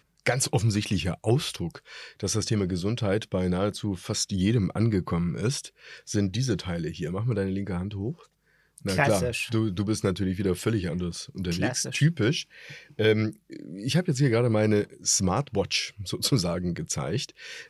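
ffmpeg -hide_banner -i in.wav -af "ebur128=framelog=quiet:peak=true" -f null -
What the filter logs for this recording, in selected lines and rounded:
Integrated loudness:
  I:         -26.9 LUFS
  Threshold: -37.2 LUFS
Loudness range:
  LRA:         3.4 LU
  Threshold: -47.2 LUFS
  LRA low:   -28.8 LUFS
  LRA high:  -25.4 LUFS
True peak:
  Peak:       -8.6 dBFS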